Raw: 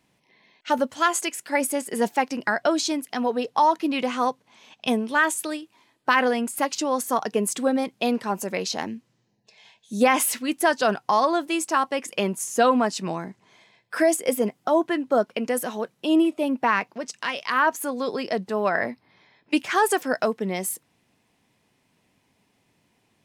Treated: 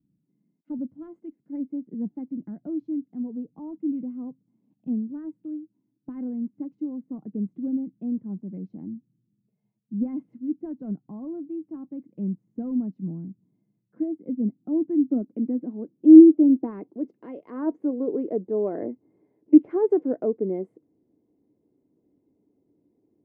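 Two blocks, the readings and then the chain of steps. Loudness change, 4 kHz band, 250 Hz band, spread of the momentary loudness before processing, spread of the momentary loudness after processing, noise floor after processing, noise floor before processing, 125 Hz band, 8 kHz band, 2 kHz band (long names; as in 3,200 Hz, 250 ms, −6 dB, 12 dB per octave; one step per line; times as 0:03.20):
0.0 dB, below −40 dB, +5.5 dB, 10 LU, 18 LU, −75 dBFS, −69 dBFS, +0.5 dB, below −40 dB, below −30 dB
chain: harmonic generator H 5 −23 dB, 7 −27 dB, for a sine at −7.5 dBFS
hollow resonant body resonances 300/2,100 Hz, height 12 dB, ringing for 45 ms
low-pass filter sweep 180 Hz → 430 Hz, 0:13.72–0:17.48
level −7.5 dB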